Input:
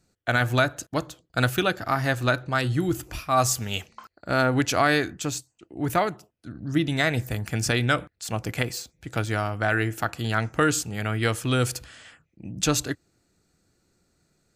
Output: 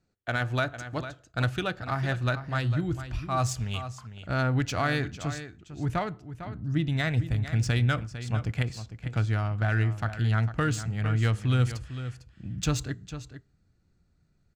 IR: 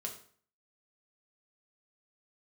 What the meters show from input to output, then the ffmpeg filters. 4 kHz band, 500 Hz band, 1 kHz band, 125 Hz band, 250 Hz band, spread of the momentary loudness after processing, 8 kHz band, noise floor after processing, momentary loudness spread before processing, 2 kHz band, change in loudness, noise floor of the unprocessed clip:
-7.0 dB, -8.0 dB, -6.5 dB, +2.0 dB, -4.5 dB, 12 LU, -10.5 dB, -68 dBFS, 11 LU, -6.5 dB, -3.5 dB, -72 dBFS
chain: -filter_complex "[0:a]asubboost=boost=4:cutoff=170,aecho=1:1:452:0.266,adynamicsmooth=sensitivity=2:basefreq=5k,asplit=2[a][b];[1:a]atrim=start_sample=2205[c];[b][c]afir=irnorm=-1:irlink=0,volume=-17dB[d];[a][d]amix=inputs=2:normalize=0,volume=-7dB"

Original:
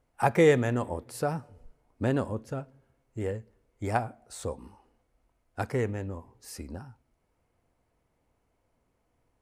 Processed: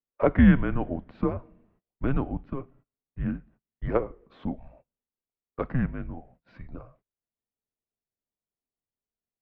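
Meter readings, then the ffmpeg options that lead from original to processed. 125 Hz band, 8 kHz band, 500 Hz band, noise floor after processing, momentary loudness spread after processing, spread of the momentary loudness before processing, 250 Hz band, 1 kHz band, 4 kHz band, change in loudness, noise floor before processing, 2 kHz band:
+3.0 dB, under -35 dB, -3.0 dB, under -85 dBFS, 24 LU, 21 LU, +7.0 dB, -4.0 dB, n/a, +2.5 dB, -75 dBFS, -1.0 dB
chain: -af "highshelf=f=2.3k:g=-10,agate=range=-27dB:threshold=-56dB:ratio=16:detection=peak,highpass=f=190:t=q:w=0.5412,highpass=f=190:t=q:w=1.307,lowpass=f=3.5k:t=q:w=0.5176,lowpass=f=3.5k:t=q:w=0.7071,lowpass=f=3.5k:t=q:w=1.932,afreqshift=-260,volume=4.5dB"

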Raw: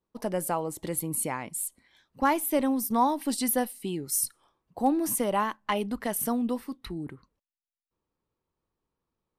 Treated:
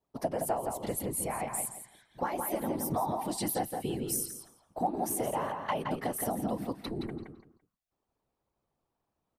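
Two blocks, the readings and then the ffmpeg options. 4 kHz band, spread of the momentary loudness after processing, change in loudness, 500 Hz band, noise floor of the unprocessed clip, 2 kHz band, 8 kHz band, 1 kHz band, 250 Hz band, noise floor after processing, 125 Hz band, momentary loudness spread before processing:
-5.0 dB, 7 LU, -5.0 dB, -3.0 dB, under -85 dBFS, -6.5 dB, -4.5 dB, -4.5 dB, -7.0 dB, -85 dBFS, +0.5 dB, 9 LU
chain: -filter_complex "[0:a]equalizer=f=710:w=4:g=11.5,acompressor=threshold=-29dB:ratio=6,afftfilt=real='hypot(re,im)*cos(2*PI*random(0))':imag='hypot(re,im)*sin(2*PI*random(1))':win_size=512:overlap=0.75,asplit=2[a][b];[b]adelay=169,lowpass=f=4.4k:p=1,volume=-4.5dB,asplit=2[c][d];[d]adelay=169,lowpass=f=4.4k:p=1,volume=0.25,asplit=2[e][f];[f]adelay=169,lowpass=f=4.4k:p=1,volume=0.25[g];[c][e][g]amix=inputs=3:normalize=0[h];[a][h]amix=inputs=2:normalize=0,volume=5dB"

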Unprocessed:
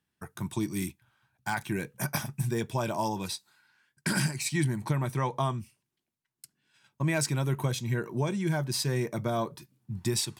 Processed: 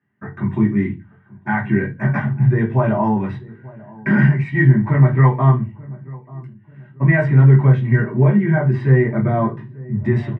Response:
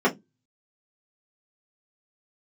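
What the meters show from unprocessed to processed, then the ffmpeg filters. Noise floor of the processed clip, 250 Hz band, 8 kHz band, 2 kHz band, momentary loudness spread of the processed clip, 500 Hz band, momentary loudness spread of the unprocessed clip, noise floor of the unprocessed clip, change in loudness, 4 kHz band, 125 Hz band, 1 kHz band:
-48 dBFS, +15.0 dB, under -30 dB, +12.5 dB, 20 LU, +12.0 dB, 9 LU, -84 dBFS, +14.5 dB, under -10 dB, +17.5 dB, +9.5 dB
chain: -filter_complex "[0:a]lowpass=f=2k:t=q:w=8.2,asplit=2[a][b];[b]adelay=887,lowpass=f=880:p=1,volume=-20.5dB,asplit=2[c][d];[d]adelay=887,lowpass=f=880:p=1,volume=0.41,asplit=2[e][f];[f]adelay=887,lowpass=f=880:p=1,volume=0.41[g];[a][c][e][g]amix=inputs=4:normalize=0[h];[1:a]atrim=start_sample=2205,asetrate=23814,aresample=44100[i];[h][i]afir=irnorm=-1:irlink=0,volume=-13dB"

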